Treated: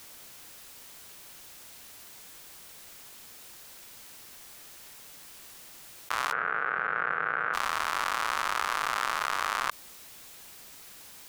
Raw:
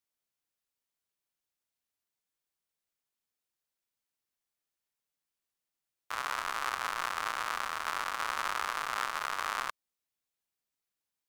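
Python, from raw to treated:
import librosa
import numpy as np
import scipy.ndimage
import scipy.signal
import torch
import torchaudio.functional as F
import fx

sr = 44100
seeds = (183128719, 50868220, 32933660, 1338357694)

y = fx.cabinet(x, sr, low_hz=110.0, low_slope=24, high_hz=2100.0, hz=(160.0, 460.0, 990.0, 1500.0), db=(10, 10, -9, 9), at=(6.31, 7.53), fade=0.02)
y = fx.env_flatten(y, sr, amount_pct=100)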